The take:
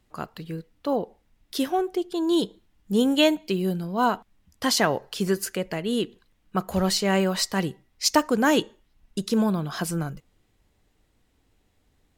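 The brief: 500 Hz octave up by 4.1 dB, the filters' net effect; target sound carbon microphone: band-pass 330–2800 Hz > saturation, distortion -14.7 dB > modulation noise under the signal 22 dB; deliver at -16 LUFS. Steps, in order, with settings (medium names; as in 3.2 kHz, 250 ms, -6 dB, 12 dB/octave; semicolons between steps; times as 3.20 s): band-pass 330–2800 Hz; peaking EQ 500 Hz +6.5 dB; saturation -13.5 dBFS; modulation noise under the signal 22 dB; trim +10.5 dB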